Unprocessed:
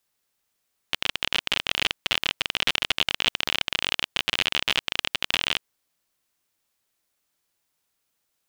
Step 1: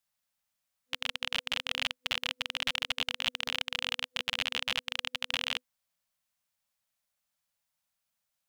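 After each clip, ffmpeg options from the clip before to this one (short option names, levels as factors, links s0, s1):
-af "afftfilt=real='re*(1-between(b*sr/4096,250,500))':imag='im*(1-between(b*sr/4096,250,500))':win_size=4096:overlap=0.75,volume=0.422"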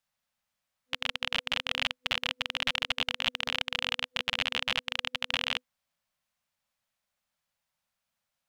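-af "highshelf=f=5400:g=-9.5,volume=1.58"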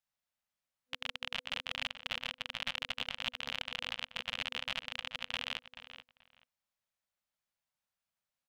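-filter_complex "[0:a]asplit=2[s0][s1];[s1]adelay=432,lowpass=f=3900:p=1,volume=0.266,asplit=2[s2][s3];[s3]adelay=432,lowpass=f=3900:p=1,volume=0.19[s4];[s0][s2][s4]amix=inputs=3:normalize=0,volume=0.398"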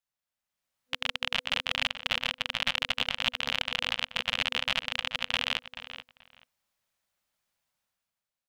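-af "dynaudnorm=f=120:g=11:m=3.35,volume=0.841"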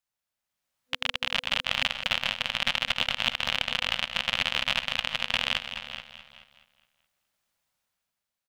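-af "aecho=1:1:209|418|627|836|1045:0.282|0.135|0.0649|0.0312|0.015,volume=1.26"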